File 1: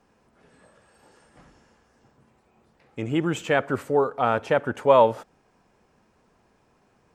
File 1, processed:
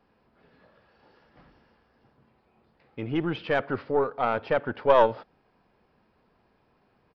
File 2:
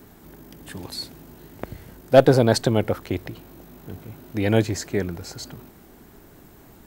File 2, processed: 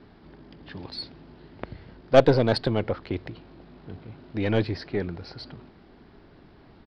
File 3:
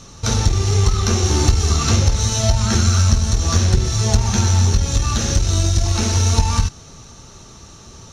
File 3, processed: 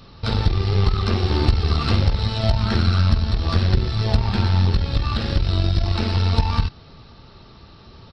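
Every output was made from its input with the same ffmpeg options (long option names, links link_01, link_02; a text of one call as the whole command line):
ffmpeg -i in.wav -af "aresample=11025,aresample=44100,aeval=exprs='0.708*(cos(1*acos(clip(val(0)/0.708,-1,1)))-cos(1*PI/2))+0.0794*(cos(4*acos(clip(val(0)/0.708,-1,1)))-cos(4*PI/2))':channel_layout=same,volume=-3dB" out.wav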